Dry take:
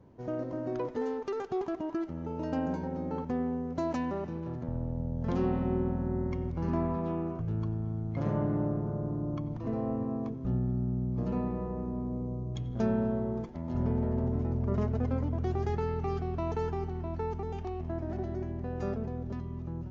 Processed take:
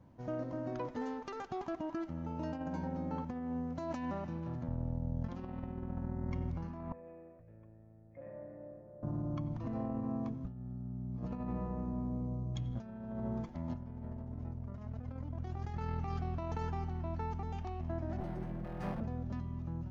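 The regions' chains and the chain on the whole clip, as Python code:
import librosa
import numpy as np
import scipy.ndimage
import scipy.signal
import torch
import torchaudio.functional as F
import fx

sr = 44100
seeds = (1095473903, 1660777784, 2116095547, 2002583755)

y = fx.chain(x, sr, fx.formant_cascade(vowel='e'),
    fx.peak_eq(hz=150.0, db=-6.5, octaves=1.1), at=(6.92, 9.03))
y = fx.chain(y, sr, fx.lower_of_two(delay_ms=5.6),
    fx.resample_linear(factor=3), at=(18.2, 19.01))
y = fx.peak_eq(y, sr, hz=410.0, db=-13.5, octaves=0.37)
y = fx.over_compress(y, sr, threshold_db=-34.0, ratio=-0.5)
y = y * librosa.db_to_amplitude(-3.5)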